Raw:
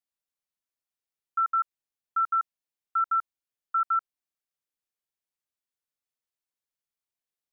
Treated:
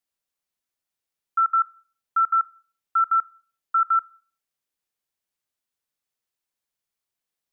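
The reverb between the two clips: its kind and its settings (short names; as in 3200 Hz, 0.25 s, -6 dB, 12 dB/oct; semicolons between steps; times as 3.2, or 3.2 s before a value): Schroeder reverb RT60 0.41 s, combs from 30 ms, DRR 18.5 dB; gain +5 dB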